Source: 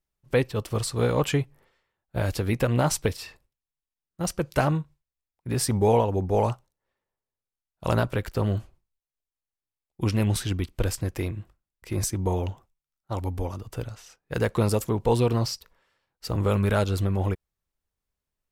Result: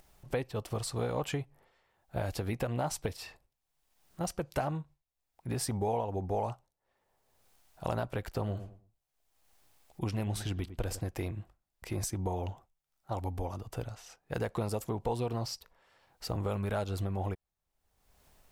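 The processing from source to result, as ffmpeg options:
-filter_complex "[0:a]asettb=1/sr,asplit=3[a][b][c];[a]atrim=end=8.374[d];[b]atrim=start=8.37:end=11,asetpts=PTS-STARTPTS,afade=t=in:d=0.004:c=qsin,afade=t=out:st=2.626:d=0.004:c=qsin,asplit=2[e][f];[f]adelay=105,lowpass=f=1.1k:p=1,volume=-13.5dB,asplit=2[g][h];[h]adelay=105,lowpass=f=1.1k:p=1,volume=0.22,asplit=2[i][j];[j]adelay=105,lowpass=f=1.1k:p=1,volume=0.22[k];[e][g][i][k]amix=inputs=4:normalize=0,atrim=end_sample=115983[l];[c]atrim=start=10.996[m];[d][l]acrossfade=d=0.004:c1=hsin:c2=qsin[n];[n][m]acrossfade=d=0.004:c1=qsin:c2=hsin,acompressor=mode=upward:threshold=-37dB:ratio=2.5,equalizer=f=740:w=2.4:g=7.5,acompressor=threshold=-27dB:ratio=3,volume=-4.5dB"

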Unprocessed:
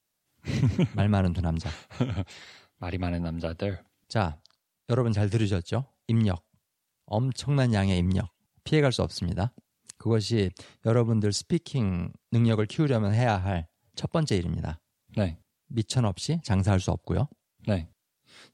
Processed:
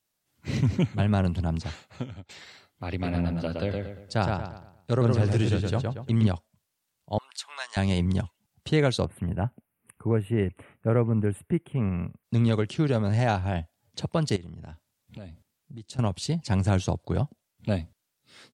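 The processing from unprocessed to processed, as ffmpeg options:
-filter_complex "[0:a]asplit=3[a][b][c];[a]afade=t=out:st=3.02:d=0.02[d];[b]asplit=2[e][f];[f]adelay=116,lowpass=f=4k:p=1,volume=-3dB,asplit=2[g][h];[h]adelay=116,lowpass=f=4k:p=1,volume=0.39,asplit=2[i][j];[j]adelay=116,lowpass=f=4k:p=1,volume=0.39,asplit=2[k][l];[l]adelay=116,lowpass=f=4k:p=1,volume=0.39,asplit=2[m][n];[n]adelay=116,lowpass=f=4k:p=1,volume=0.39[o];[e][g][i][k][m][o]amix=inputs=6:normalize=0,afade=t=in:st=3.02:d=0.02,afade=t=out:st=6.26:d=0.02[p];[c]afade=t=in:st=6.26:d=0.02[q];[d][p][q]amix=inputs=3:normalize=0,asettb=1/sr,asplit=3[r][s][t];[r]atrim=end=7.184[u];[s]atrim=start=7.18:end=7.77,asetpts=PTS-STARTPTS,afade=t=in:d=0.004:c=qsin,afade=t=out:st=0.586:d=0.004:c=qsin,highpass=f=940:w=0.5412,highpass=f=940:w=1.3066[v];[t]atrim=start=7.766[w];[u][v]acrossfade=d=0.004:c1=hsin:c2=qsin[x];[x][w]acrossfade=d=0.004:c1=qsin:c2=hsin,asplit=3[y][z][aa];[y]afade=t=out:st=9.04:d=0.02[ab];[z]asuperstop=centerf=5300:order=8:qfactor=0.76,afade=t=in:st=9.04:d=0.02,afade=t=out:st=12.23:d=0.02[ac];[aa]afade=t=in:st=12.23:d=0.02[ad];[ab][ac][ad]amix=inputs=3:normalize=0,asettb=1/sr,asplit=3[ae][af][ag];[ae]atrim=end=14.364[ah];[af]atrim=start=14.36:end=15.99,asetpts=PTS-STARTPTS,afade=t=in:d=0.004:c=qsin,afade=t=out:st=1.626:d=0.004:c=qsin,acompressor=threshold=-40dB:ratio=4:attack=3.2:release=140:knee=1:detection=peak[ai];[ag]atrim=start=15.986[aj];[ah][ai]acrossfade=d=0.004:c1=hsin:c2=qsin[ak];[ak][aj]acrossfade=d=0.004:c1=qsin:c2=hsin,asplit=2[al][am];[al]atrim=end=2.29,asetpts=PTS-STARTPTS,afade=t=out:st=1.58:d=0.71:silence=0.112202[an];[am]atrim=start=2.29,asetpts=PTS-STARTPTS,afade=t=in:d=0.004:c=hsin:silence=0.112202[ao];[an][ao]concat=n=2:v=0:a=1"

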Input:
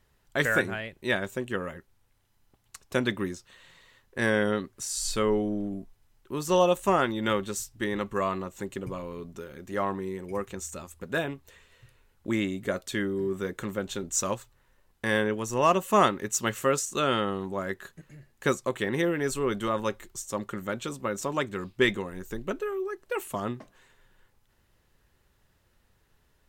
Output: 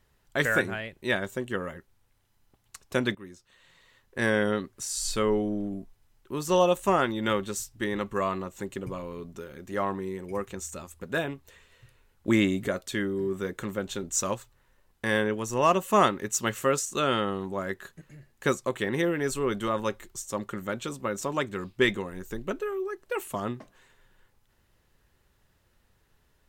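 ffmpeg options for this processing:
-filter_complex "[0:a]asettb=1/sr,asplit=3[a][b][c];[a]atrim=end=1.194[d];[b]atrim=start=1.19:end=1.76,asetpts=PTS-STARTPTS,afade=t=in:d=0.004:c=qsin,afade=t=out:st=0.566:d=0.004:c=qsin,bandreject=f=2.5k:w=12[e];[c]atrim=start=1.756[f];[d][e]acrossfade=d=0.004:c1=hsin:c2=qsin[g];[g][f]acrossfade=d=0.004:c1=qsin:c2=hsin,asettb=1/sr,asplit=3[h][i][j];[h]atrim=end=12.274[k];[i]atrim=start=12.27:end=12.68,asetpts=PTS-STARTPTS,afade=t=in:d=0.004:c=qsin,afade=t=out:st=0.406:d=0.004:c=qsin,acontrast=33[l];[j]atrim=start=12.676[m];[k][l]acrossfade=d=0.004:c1=hsin:c2=qsin[n];[n][m]acrossfade=d=0.004:c1=qsin:c2=hsin,asplit=2[o][p];[o]atrim=end=3.15,asetpts=PTS-STARTPTS,afade=t=out:st=3.146:d=0.004:c=hsin:silence=0.133352[q];[p]atrim=start=3.15,asetpts=PTS-STARTPTS,afade=t=in:d=1.03:silence=0.133352[r];[q][r]concat=n=2:v=0:a=1"

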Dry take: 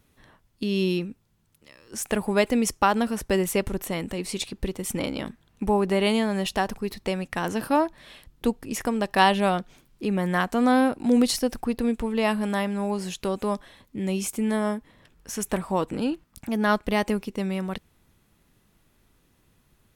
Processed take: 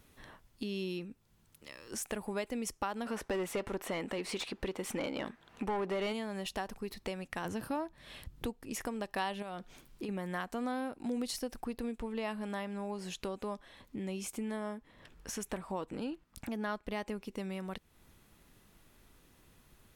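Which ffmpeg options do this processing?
-filter_complex "[0:a]asplit=3[a][b][c];[a]afade=t=out:st=3.05:d=0.02[d];[b]asplit=2[e][f];[f]highpass=f=720:p=1,volume=21dB,asoftclip=type=tanh:threshold=-10dB[g];[e][g]amix=inputs=2:normalize=0,lowpass=f=1.6k:p=1,volume=-6dB,afade=t=in:st=3.05:d=0.02,afade=t=out:st=6.12:d=0.02[h];[c]afade=t=in:st=6.12:d=0.02[i];[d][h][i]amix=inputs=3:normalize=0,asettb=1/sr,asplit=3[j][k][l];[j]atrim=end=7.454[m];[k]atrim=start=7.45:end=8.46,asetpts=PTS-STARTPTS,afade=t=in:d=0.004:c=qsin,afade=t=out:st=1.006:d=0.004:c=qsin,equalizer=f=90:t=o:w=2:g=11.5[n];[l]atrim=start=8.456[o];[m][n]acrossfade=d=0.004:c1=hsin:c2=qsin[p];[p][o]acrossfade=d=0.004:c1=qsin:c2=hsin,asettb=1/sr,asplit=3[q][r][s];[q]atrim=end=9.424[t];[r]atrim=start=9.42:end=10.09,asetpts=PTS-STARTPTS,afade=t=in:d=0.004:c=qsin,afade=t=out:st=0.666:d=0.004:c=qsin,acompressor=threshold=-28dB:ratio=4:attack=3.2:release=140:knee=1:detection=peak[u];[s]atrim=start=10.086[v];[t][u]acrossfade=d=0.004:c1=hsin:c2=qsin[w];[w][v]acrossfade=d=0.004:c1=qsin:c2=hsin,asettb=1/sr,asplit=3[x][y][z];[x]atrim=end=11.984[aa];[y]atrim=start=11.98:end=17.25,asetpts=PTS-STARTPTS,afade=t=in:d=0.004:c=qsin,afade=t=out:st=5.266:d=0.004:c=qsin,highshelf=f=7.8k:g=-6.5[ab];[z]atrim=start=17.246[ac];[aa][ab]acrossfade=d=0.004:c1=hsin:c2=qsin[ad];[ad][ac]acrossfade=d=0.004:c1=qsin:c2=hsin,equalizer=f=130:w=0.64:g=-3.5,acompressor=threshold=-44dB:ratio=2.5,volume=2dB"

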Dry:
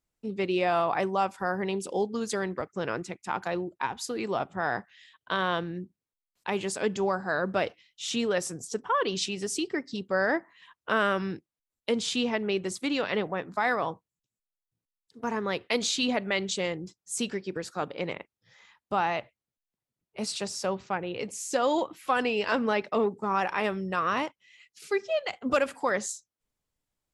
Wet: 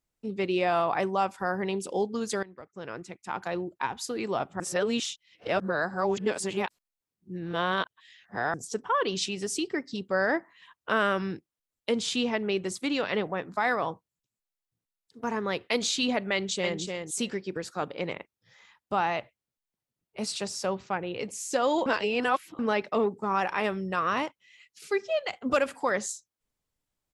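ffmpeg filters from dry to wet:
-filter_complex "[0:a]asplit=2[a][b];[b]afade=t=in:st=16.33:d=0.01,afade=t=out:st=16.8:d=0.01,aecho=0:1:300|600:0.562341|0.0562341[c];[a][c]amix=inputs=2:normalize=0,asplit=6[d][e][f][g][h][i];[d]atrim=end=2.43,asetpts=PTS-STARTPTS,afade=t=out:st=2.426:d=0.004:c=hsin:silence=0.105925[j];[e]atrim=start=2.43:end=4.602,asetpts=PTS-STARTPTS,afade=t=in:d=1.28:silence=0.105925[k];[f]atrim=start=4.598:end=8.542,asetpts=PTS-STARTPTS,areverse[l];[g]atrim=start=8.538:end=21.862[m];[h]atrim=start=21.858:end=22.592,asetpts=PTS-STARTPTS,areverse[n];[i]atrim=start=22.588[o];[j][k]concat=n=2:v=0:a=1[p];[p][l]acrossfade=d=0.004:c1=hsin:c2=hsin[q];[q][m]acrossfade=d=0.004:c1=hsin:c2=hsin[r];[r][n]acrossfade=d=0.004:c1=hsin:c2=hsin[s];[s][o]acrossfade=d=0.004:c1=hsin:c2=hsin"

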